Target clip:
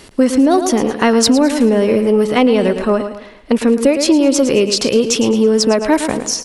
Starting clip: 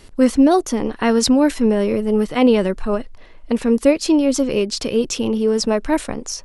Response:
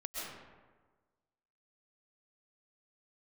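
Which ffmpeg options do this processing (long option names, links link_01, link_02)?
-filter_complex "[0:a]asplit=2[link_01][link_02];[link_02]aecho=0:1:110|220|330|440:0.282|0.107|0.0407|0.0155[link_03];[link_01][link_03]amix=inputs=2:normalize=0,acompressor=threshold=-15dB:ratio=6,highpass=frequency=150:poles=1,acontrast=51,asplit=2[link_04][link_05];[link_05]adelay=204.1,volume=-24dB,highshelf=frequency=4000:gain=-4.59[link_06];[link_04][link_06]amix=inputs=2:normalize=0,volume=2.5dB"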